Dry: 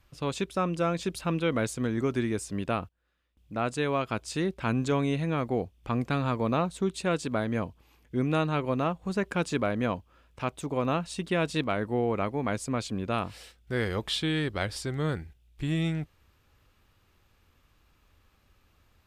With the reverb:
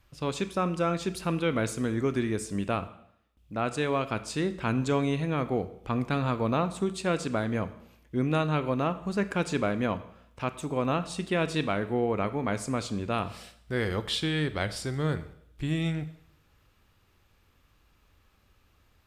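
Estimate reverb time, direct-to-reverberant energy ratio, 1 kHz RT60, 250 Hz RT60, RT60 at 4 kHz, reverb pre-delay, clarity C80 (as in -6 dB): 0.70 s, 11.5 dB, 0.70 s, 0.80 s, 0.70 s, 12 ms, 17.0 dB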